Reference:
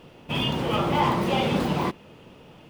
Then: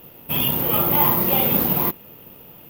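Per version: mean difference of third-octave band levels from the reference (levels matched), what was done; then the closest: 7.0 dB: careless resampling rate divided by 3×, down none, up zero stuff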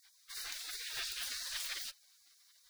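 22.0 dB: spectral gate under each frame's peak -30 dB weak; gain +4.5 dB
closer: first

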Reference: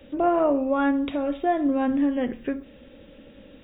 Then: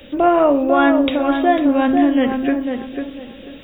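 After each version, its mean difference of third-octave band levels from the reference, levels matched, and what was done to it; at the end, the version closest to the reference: 3.5 dB: high shelf 2200 Hz +11 dB; tape echo 0.496 s, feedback 31%, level -4 dB, low-pass 1600 Hz; gain +6.5 dB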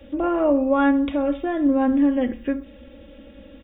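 1.5 dB: bell 65 Hz +8 dB 1.1 oct; comb 3.6 ms, depth 60%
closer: second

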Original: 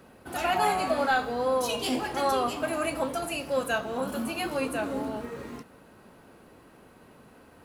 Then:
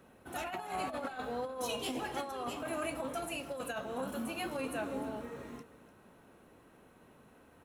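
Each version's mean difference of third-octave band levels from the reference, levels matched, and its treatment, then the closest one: 3.5 dB: notch 4700 Hz, Q 6.1; negative-ratio compressor -28 dBFS, ratio -0.5; on a send: echo 0.297 s -16 dB; on the sum: gain -8.5 dB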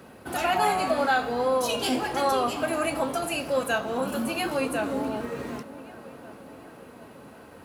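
2.0 dB: HPF 64 Hz; in parallel at -1.5 dB: compressor, threshold -35 dBFS, peak gain reduction 14 dB; on the sum: tape echo 0.742 s, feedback 67%, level -16 dB, low-pass 2400 Hz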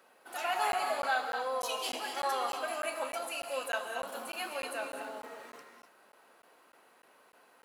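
7.0 dB: HPF 630 Hz 12 dB/oct; non-linear reverb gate 0.28 s rising, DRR 4.5 dB; crackling interface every 0.30 s, samples 512, zero, from 0.72; gain -5 dB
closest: second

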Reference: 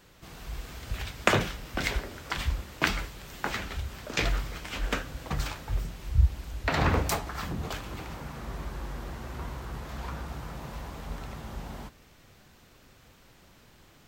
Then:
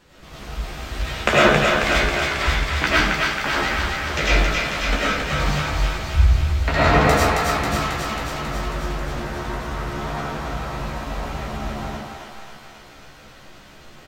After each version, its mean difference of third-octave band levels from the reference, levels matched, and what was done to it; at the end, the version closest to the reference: 5.0 dB: high shelf 10000 Hz -11.5 dB; doubler 14 ms -4 dB; on a send: thinning echo 0.271 s, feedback 72%, high-pass 640 Hz, level -3 dB; on the sum: digital reverb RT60 0.84 s, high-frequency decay 0.5×, pre-delay 60 ms, DRR -7 dB; gain +2 dB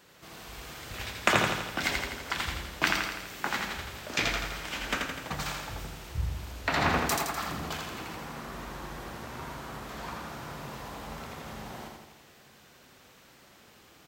3.5 dB: HPF 250 Hz 6 dB/oct; dynamic EQ 480 Hz, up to -5 dB, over -48 dBFS, Q 2.2; in parallel at -11 dB: hard clip -20.5 dBFS, distortion -11 dB; on the sum: feedback echo 83 ms, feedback 58%, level -3.5 dB; gain -1.5 dB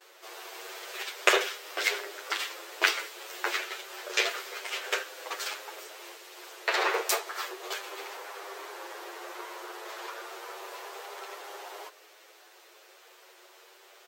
11.0 dB: gate with hold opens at -52 dBFS; dynamic EQ 760 Hz, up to -6 dB, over -46 dBFS, Q 0.85; brick-wall FIR high-pass 340 Hz; endless flanger 8.8 ms +0.31 Hz; gain +7.5 dB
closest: second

